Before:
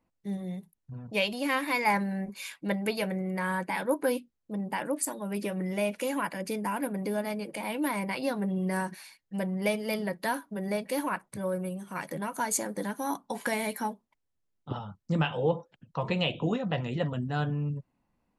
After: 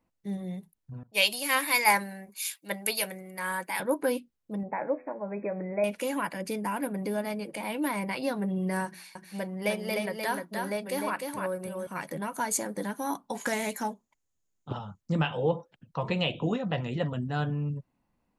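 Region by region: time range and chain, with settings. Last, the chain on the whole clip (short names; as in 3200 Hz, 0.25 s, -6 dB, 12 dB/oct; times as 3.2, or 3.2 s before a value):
1.03–3.8 RIAA curve recording + three-band expander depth 70%
4.63–5.84 brick-wall FIR low-pass 2600 Hz + bell 610 Hz +10 dB 1.1 oct + resonator 84 Hz, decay 0.59 s, mix 50%
8.85–11.87 low shelf 210 Hz -7.5 dB + notches 60/120/180/240/300/360 Hz + echo 0.302 s -4 dB
13.37–15.01 bell 6800 Hz +15 dB 0.26 oct + Doppler distortion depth 0.22 ms
whole clip: dry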